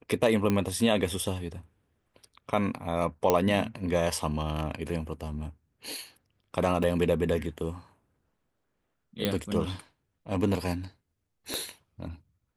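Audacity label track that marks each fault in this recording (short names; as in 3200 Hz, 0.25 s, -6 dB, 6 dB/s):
0.500000	0.500000	pop -14 dBFS
3.300000	3.300000	pop -8 dBFS
6.830000	6.830000	gap 3.9 ms
9.250000	9.250000	pop -12 dBFS
11.540000	11.540000	pop -15 dBFS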